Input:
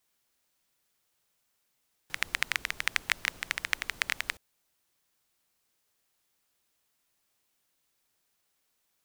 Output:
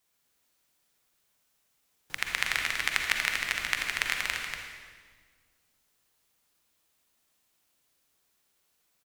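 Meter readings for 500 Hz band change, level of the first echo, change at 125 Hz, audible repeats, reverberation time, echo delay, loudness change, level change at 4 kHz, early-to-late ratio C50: +3.5 dB, −6.0 dB, +3.5 dB, 1, 1.6 s, 238 ms, +2.5 dB, +3.0 dB, 0.0 dB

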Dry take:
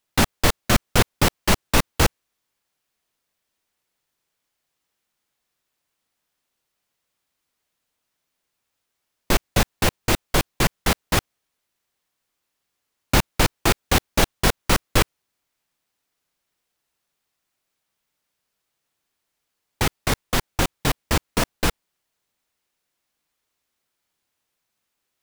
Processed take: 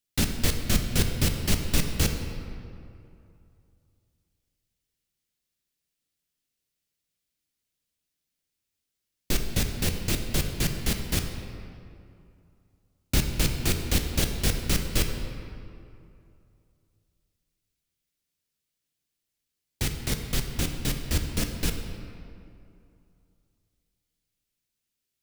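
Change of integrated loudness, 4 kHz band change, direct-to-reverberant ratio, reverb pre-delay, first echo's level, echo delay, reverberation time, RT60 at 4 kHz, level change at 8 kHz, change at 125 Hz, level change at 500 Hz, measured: −6.0 dB, −5.5 dB, 4.0 dB, 8 ms, no echo audible, no echo audible, 2.6 s, 1.5 s, −4.0 dB, −3.0 dB, −10.0 dB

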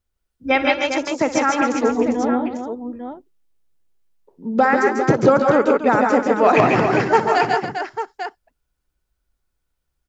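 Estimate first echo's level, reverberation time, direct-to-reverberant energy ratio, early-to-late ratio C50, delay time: −14.0 dB, no reverb audible, no reverb audible, no reverb audible, 60 ms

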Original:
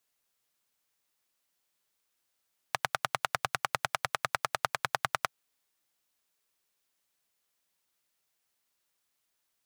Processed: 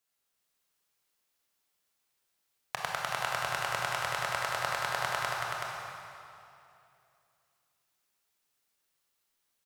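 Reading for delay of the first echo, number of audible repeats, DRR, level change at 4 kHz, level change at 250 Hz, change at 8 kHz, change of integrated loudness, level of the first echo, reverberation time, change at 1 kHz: 377 ms, 1, −4.0 dB, +1.0 dB, +1.0 dB, +0.5 dB, 0.0 dB, −4.0 dB, 2.7 s, 0.0 dB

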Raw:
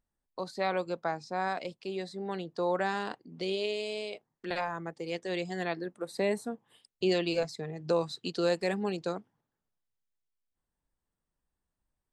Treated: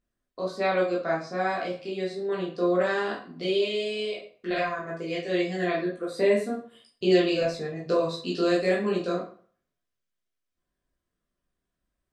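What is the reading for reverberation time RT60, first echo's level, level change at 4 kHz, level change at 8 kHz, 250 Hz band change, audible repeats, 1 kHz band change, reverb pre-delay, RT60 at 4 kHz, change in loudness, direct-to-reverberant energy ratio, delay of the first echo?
0.45 s, no echo audible, +4.5 dB, can't be measured, +7.0 dB, no echo audible, +3.0 dB, 11 ms, 0.35 s, +6.0 dB, −5.0 dB, no echo audible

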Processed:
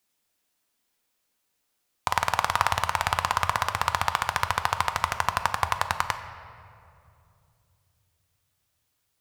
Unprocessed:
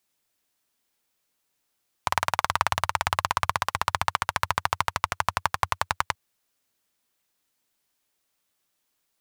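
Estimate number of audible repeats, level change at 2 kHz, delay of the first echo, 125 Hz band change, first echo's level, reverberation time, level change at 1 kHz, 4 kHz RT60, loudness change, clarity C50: no echo audible, +0.5 dB, no echo audible, +1.0 dB, no echo audible, 2.6 s, +1.0 dB, 1.5 s, +0.5 dB, 10.0 dB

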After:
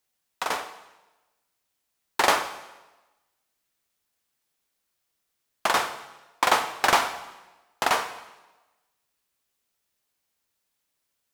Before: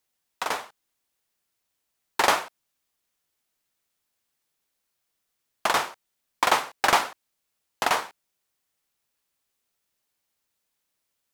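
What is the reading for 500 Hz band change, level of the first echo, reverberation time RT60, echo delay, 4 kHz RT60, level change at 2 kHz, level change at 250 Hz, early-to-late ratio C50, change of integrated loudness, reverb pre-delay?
+0.5 dB, no echo audible, 1.1 s, no echo audible, 1.0 s, +0.5 dB, +0.5 dB, 11.0 dB, 0.0 dB, 6 ms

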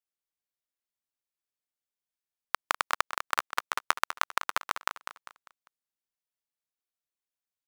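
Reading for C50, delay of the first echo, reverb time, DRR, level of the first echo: no reverb audible, 199 ms, no reverb audible, no reverb audible, −10.5 dB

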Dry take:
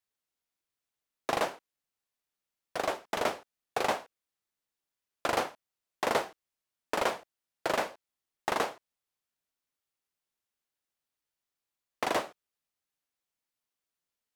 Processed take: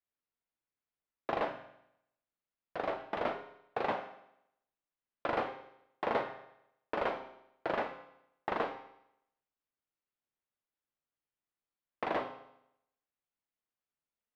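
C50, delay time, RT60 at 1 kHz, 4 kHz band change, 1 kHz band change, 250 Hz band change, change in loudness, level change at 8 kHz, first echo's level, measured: 9.0 dB, no echo audible, 0.80 s, −11.0 dB, −3.5 dB, −2.5 dB, −4.5 dB, below −25 dB, no echo audible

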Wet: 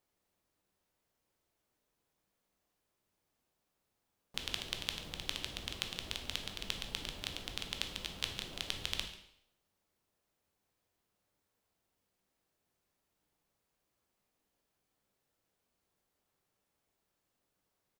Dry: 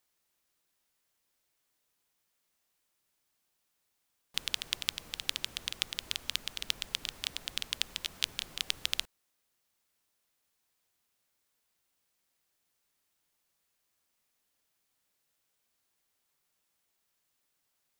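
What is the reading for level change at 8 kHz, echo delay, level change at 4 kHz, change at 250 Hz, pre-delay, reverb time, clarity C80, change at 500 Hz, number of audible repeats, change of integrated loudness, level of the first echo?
−6.5 dB, 141 ms, −5.0 dB, +5.5 dB, 6 ms, 0.75 s, 10.5 dB, +4.5 dB, 1, −5.0 dB, −18.5 dB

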